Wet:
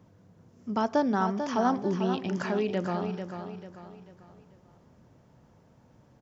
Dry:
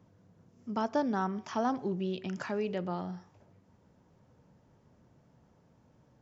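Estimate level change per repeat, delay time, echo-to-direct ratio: −8.0 dB, 443 ms, −7.5 dB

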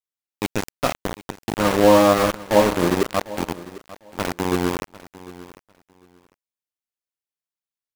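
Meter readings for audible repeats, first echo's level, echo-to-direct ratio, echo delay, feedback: 2, −18.0 dB, −18.0 dB, 749 ms, 19%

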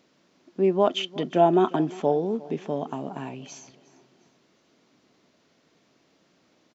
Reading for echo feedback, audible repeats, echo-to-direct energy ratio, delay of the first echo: 40%, 2, −20.0 dB, 355 ms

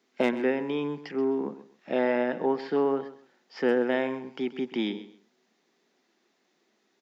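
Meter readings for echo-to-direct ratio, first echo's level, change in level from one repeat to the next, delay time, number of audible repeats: −14.5 dB, −14.5 dB, −13.0 dB, 130 ms, 2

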